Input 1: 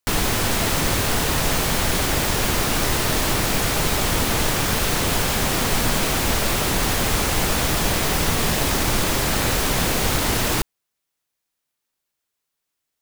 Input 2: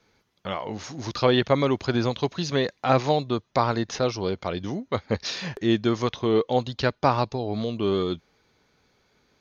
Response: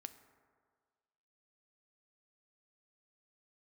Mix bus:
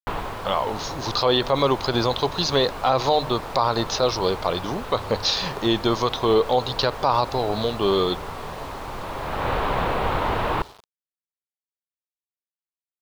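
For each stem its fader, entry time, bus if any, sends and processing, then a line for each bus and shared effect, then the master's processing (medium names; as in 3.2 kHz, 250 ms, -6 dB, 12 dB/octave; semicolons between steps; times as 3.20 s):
-6.0 dB, 0.00 s, send -4.5 dB, low-pass 2.4 kHz 24 dB/octave; auto duck -23 dB, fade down 0.50 s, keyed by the second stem
-0.5 dB, 0.00 s, send -6.5 dB, hum notches 50/100/150 Hz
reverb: on, RT60 1.7 s, pre-delay 4 ms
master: word length cut 8-bit, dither none; graphic EQ 250/500/1000/2000/4000 Hz -4/+4/+9/-5/+10 dB; peak limiter -8.5 dBFS, peak gain reduction 9.5 dB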